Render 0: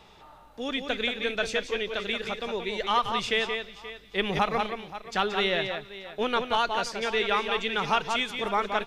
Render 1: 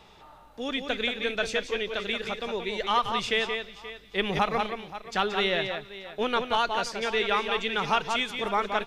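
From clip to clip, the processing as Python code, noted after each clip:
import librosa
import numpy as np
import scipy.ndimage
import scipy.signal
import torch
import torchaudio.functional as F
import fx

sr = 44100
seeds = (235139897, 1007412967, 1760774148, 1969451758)

y = x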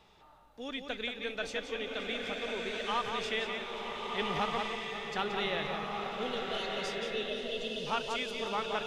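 y = fx.spec_erase(x, sr, start_s=6.09, length_s=1.78, low_hz=680.0, high_hz=2500.0)
y = fx.rev_bloom(y, sr, seeds[0], attack_ms=1490, drr_db=0.5)
y = y * librosa.db_to_amplitude(-8.5)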